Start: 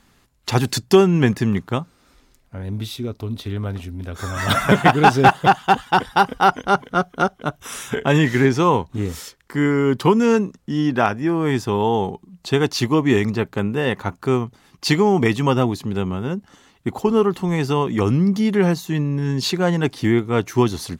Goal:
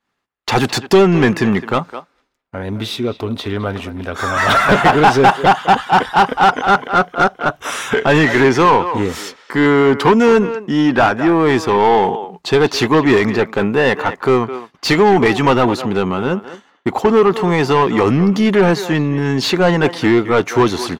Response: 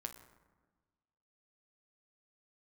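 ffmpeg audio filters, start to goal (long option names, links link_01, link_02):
-filter_complex "[0:a]agate=range=-33dB:threshold=-41dB:ratio=3:detection=peak,asplit=2[link_01][link_02];[link_02]adelay=210,highpass=300,lowpass=3400,asoftclip=type=hard:threshold=-12dB,volume=-15dB[link_03];[link_01][link_03]amix=inputs=2:normalize=0,asplit=2[link_04][link_05];[link_05]highpass=frequency=720:poles=1,volume=22dB,asoftclip=type=tanh:threshold=-1.5dB[link_06];[link_04][link_06]amix=inputs=2:normalize=0,lowpass=frequency=1800:poles=1,volume=-6dB"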